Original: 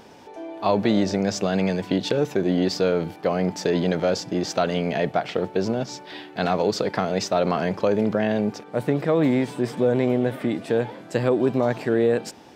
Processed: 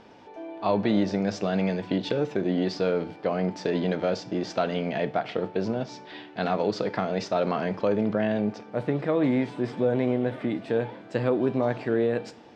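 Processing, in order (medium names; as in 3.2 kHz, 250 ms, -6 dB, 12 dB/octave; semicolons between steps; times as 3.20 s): low-pass 4.2 kHz 12 dB/octave; on a send: reverberation, pre-delay 3 ms, DRR 11 dB; on the sum: trim -4 dB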